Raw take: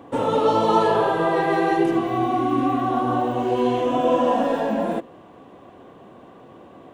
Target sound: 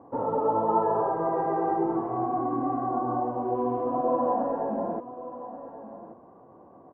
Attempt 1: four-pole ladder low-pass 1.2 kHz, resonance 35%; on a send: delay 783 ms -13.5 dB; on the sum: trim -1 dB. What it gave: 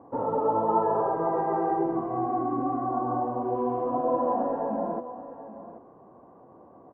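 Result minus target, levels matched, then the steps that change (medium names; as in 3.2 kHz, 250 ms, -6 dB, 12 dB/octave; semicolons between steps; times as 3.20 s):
echo 350 ms early
change: delay 1133 ms -13.5 dB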